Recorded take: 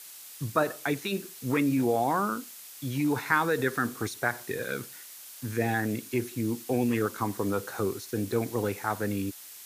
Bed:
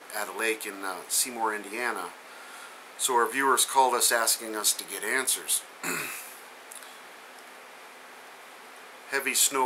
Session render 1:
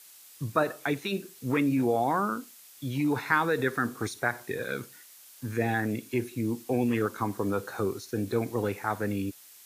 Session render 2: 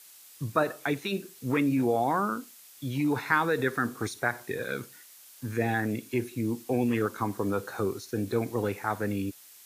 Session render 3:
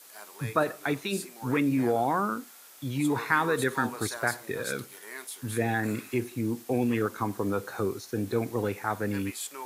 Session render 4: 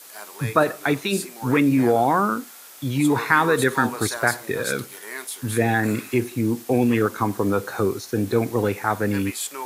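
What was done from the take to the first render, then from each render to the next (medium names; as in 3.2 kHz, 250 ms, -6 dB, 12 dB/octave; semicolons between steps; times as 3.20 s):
noise print and reduce 6 dB
no audible change
add bed -14.5 dB
trim +7.5 dB; peak limiter -2 dBFS, peak gain reduction 1 dB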